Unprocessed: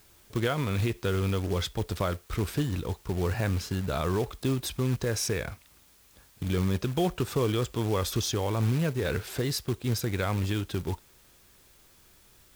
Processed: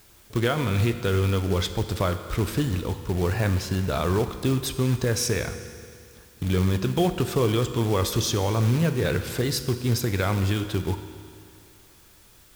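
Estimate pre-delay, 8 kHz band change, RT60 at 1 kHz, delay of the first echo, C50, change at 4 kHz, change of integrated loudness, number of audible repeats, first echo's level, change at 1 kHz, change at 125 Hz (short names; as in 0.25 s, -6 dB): 13 ms, +4.5 dB, 2.3 s, none, 10.0 dB, +4.5 dB, +4.5 dB, none, none, +4.5 dB, +5.0 dB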